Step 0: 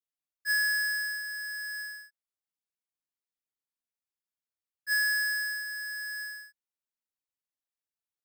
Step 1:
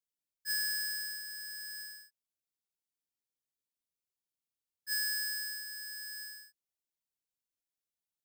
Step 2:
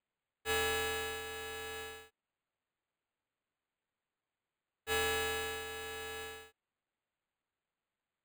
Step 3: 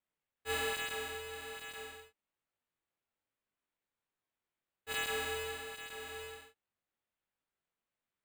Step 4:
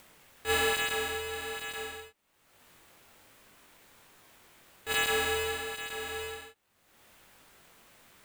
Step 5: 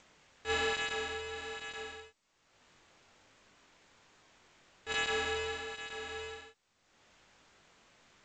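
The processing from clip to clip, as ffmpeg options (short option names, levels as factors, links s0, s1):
-af "equalizer=f=1400:t=o:w=1.3:g=-14"
-af "acrusher=samples=8:mix=1:aa=0.000001"
-af "flanger=delay=19:depth=3.9:speed=1.2,volume=1.12"
-af "acompressor=mode=upward:threshold=0.00501:ratio=2.5,volume=2.51"
-af "volume=0.596" -ar 16000 -c:a g722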